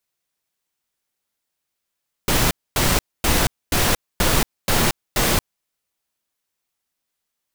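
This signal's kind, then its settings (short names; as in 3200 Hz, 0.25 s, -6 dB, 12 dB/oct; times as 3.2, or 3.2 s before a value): noise bursts pink, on 0.23 s, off 0.25 s, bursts 7, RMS -17.5 dBFS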